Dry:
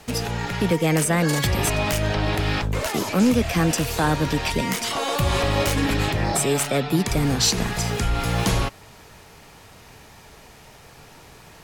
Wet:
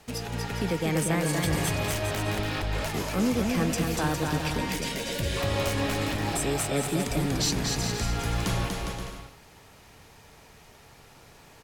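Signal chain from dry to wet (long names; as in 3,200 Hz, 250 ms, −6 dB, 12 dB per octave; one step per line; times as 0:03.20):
gain on a spectral selection 0:04.70–0:05.37, 670–1,400 Hz −16 dB
bouncing-ball delay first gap 240 ms, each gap 0.7×, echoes 5
level −8 dB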